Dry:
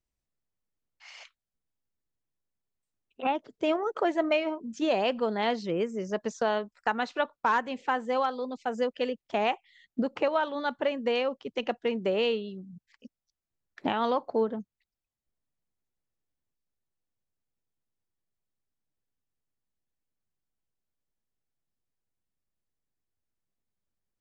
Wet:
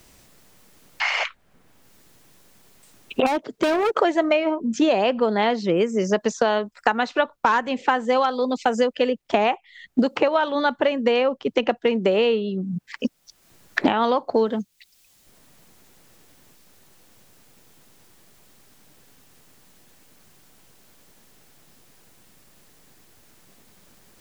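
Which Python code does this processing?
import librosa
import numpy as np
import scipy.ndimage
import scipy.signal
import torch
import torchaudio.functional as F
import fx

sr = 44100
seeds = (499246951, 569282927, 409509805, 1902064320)

y = fx.overload_stage(x, sr, gain_db=31.0, at=(3.26, 3.92))
y = fx.band_squash(y, sr, depth_pct=100)
y = y * 10.0 ** (7.5 / 20.0)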